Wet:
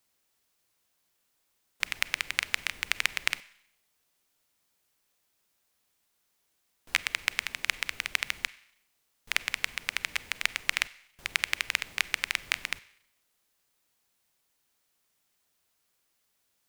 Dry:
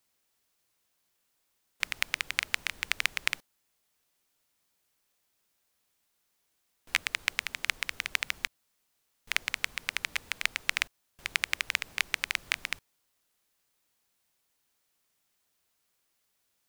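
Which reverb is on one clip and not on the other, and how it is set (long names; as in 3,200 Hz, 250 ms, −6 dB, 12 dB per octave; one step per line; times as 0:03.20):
four-comb reverb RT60 0.74 s, combs from 31 ms, DRR 18.5 dB
level +1 dB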